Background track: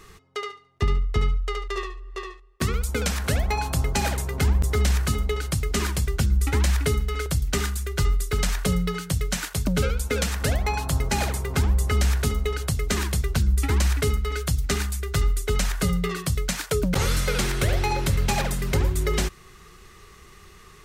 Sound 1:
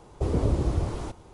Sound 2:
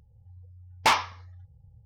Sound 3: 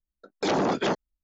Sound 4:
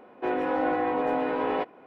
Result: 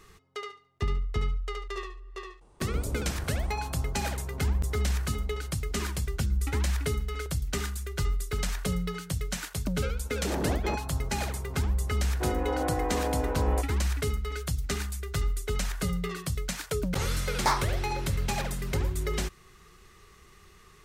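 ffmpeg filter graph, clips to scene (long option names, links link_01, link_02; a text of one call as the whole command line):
ffmpeg -i bed.wav -i cue0.wav -i cue1.wav -i cue2.wav -i cue3.wav -filter_complex "[0:a]volume=-6.5dB[link_01];[1:a]equalizer=frequency=8600:width=7.4:gain=12[link_02];[3:a]tiltshelf=frequency=640:gain=5[link_03];[4:a]lowpass=frequency=1500:poles=1[link_04];[2:a]asuperstop=centerf=2800:order=4:qfactor=1.4[link_05];[link_02]atrim=end=1.33,asetpts=PTS-STARTPTS,volume=-11dB,afade=type=in:duration=0.004:curve=hsin,afade=type=out:start_time=1.326:duration=0.004:curve=hsin,adelay=2410[link_06];[link_03]atrim=end=1.23,asetpts=PTS-STARTPTS,volume=-9dB,afade=type=in:duration=0.004:curve=hsin,afade=type=out:start_time=1.226:duration=0.004:curve=hsin,adelay=9820[link_07];[link_04]atrim=end=1.86,asetpts=PTS-STARTPTS,volume=-3.5dB,afade=type=in:duration=0.004:curve=hsin,afade=type=out:start_time=1.856:duration=0.004:curve=hsin,adelay=11980[link_08];[link_05]atrim=end=1.85,asetpts=PTS-STARTPTS,volume=-3.5dB,afade=type=in:duration=0.004:curve=hsin,afade=type=out:start_time=1.846:duration=0.004:curve=hsin,adelay=16600[link_09];[link_01][link_06][link_07][link_08][link_09]amix=inputs=5:normalize=0" out.wav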